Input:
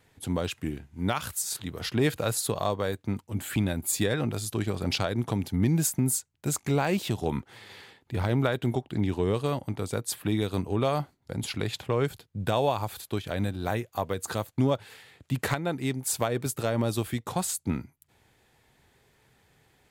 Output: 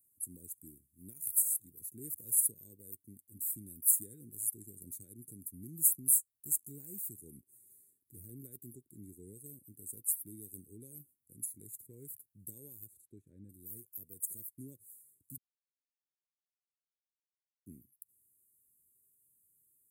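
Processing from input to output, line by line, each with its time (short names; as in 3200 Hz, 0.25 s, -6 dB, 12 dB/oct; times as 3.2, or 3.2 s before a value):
12.86–13.49 LPF 4400 Hz -> 1800 Hz
15.38–17.66 mute
whole clip: inverse Chebyshev band-stop 650–5400 Hz, stop band 40 dB; pre-emphasis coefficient 0.97; gain +3.5 dB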